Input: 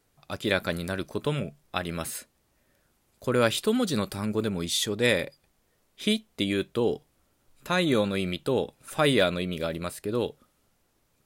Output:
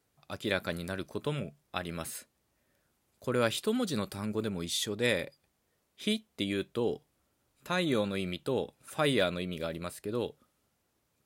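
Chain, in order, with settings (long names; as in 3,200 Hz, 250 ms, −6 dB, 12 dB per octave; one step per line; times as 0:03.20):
high-pass filter 51 Hz
level −5.5 dB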